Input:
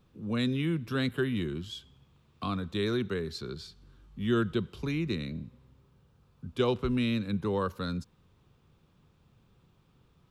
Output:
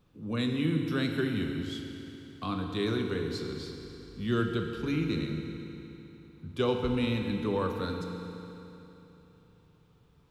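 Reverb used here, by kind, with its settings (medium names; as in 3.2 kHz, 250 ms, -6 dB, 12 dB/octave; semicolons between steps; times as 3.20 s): FDN reverb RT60 3.3 s, high-frequency decay 0.9×, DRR 2.5 dB; trim -1.5 dB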